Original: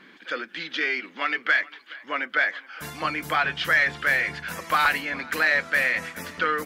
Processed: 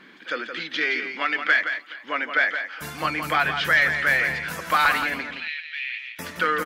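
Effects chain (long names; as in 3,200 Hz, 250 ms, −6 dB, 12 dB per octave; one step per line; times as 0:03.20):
0:05.31–0:06.19: flat-topped band-pass 3,000 Hz, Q 2.4
single-tap delay 170 ms −8 dB
level +1.5 dB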